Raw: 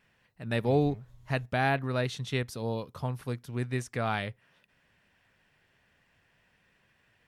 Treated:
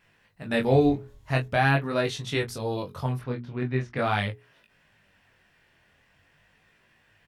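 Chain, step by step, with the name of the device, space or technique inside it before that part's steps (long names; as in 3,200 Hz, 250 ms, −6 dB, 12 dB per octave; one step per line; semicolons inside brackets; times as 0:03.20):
0:03.19–0:03.97: high-frequency loss of the air 250 metres
double-tracked vocal (double-tracking delay 21 ms −9 dB; chorus effect 0.44 Hz, delay 18 ms, depth 6.4 ms)
mains-hum notches 60/120/180/240/300/360/420 Hz
level +7.5 dB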